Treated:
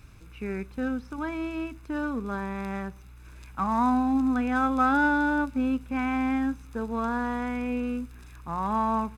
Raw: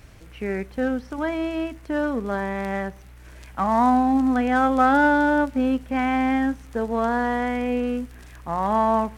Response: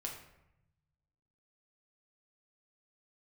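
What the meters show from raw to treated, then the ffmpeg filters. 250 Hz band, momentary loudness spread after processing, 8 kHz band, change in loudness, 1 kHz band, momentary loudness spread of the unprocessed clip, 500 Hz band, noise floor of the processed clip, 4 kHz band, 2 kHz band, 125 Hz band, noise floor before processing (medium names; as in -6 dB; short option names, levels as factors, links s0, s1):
-4.0 dB, 12 LU, no reading, -5.0 dB, -6.0 dB, 12 LU, -10.0 dB, -48 dBFS, -6.5 dB, -4.5 dB, -3.0 dB, -45 dBFS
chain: -af "aecho=1:1:0.8:0.53,volume=0.501"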